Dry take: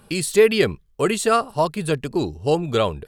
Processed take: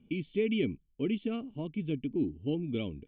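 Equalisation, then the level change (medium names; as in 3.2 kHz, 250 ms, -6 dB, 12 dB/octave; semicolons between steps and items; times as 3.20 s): cascade formant filter i; 0.0 dB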